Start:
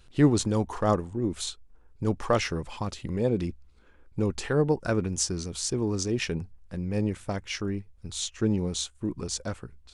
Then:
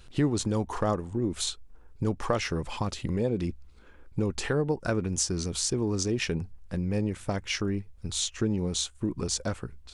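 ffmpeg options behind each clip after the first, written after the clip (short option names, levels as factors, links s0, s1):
-af "acompressor=threshold=0.0282:ratio=2.5,volume=1.68"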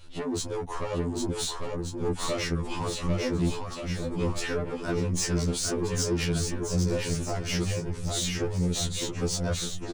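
-filter_complex "[0:a]asoftclip=type=tanh:threshold=0.0501,asplit=2[s0][s1];[s1]aecho=0:1:800|1480|2058|2549|2967:0.631|0.398|0.251|0.158|0.1[s2];[s0][s2]amix=inputs=2:normalize=0,afftfilt=real='re*2*eq(mod(b,4),0)':imag='im*2*eq(mod(b,4),0)':win_size=2048:overlap=0.75,volume=1.58"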